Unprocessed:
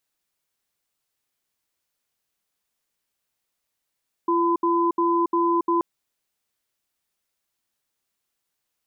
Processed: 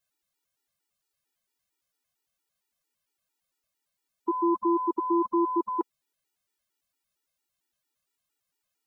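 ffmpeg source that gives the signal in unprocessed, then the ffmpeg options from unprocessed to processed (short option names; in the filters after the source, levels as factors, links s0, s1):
-f lavfi -i "aevalsrc='0.0944*(sin(2*PI*341*t)+sin(2*PI*1010*t))*clip(min(mod(t,0.35),0.28-mod(t,0.35))/0.005,0,1)':d=1.53:s=44100"
-af "afftfilt=real='re*gt(sin(2*PI*4.4*pts/sr)*(1-2*mod(floor(b*sr/1024/250),2)),0)':imag='im*gt(sin(2*PI*4.4*pts/sr)*(1-2*mod(floor(b*sr/1024/250),2)),0)':win_size=1024:overlap=0.75"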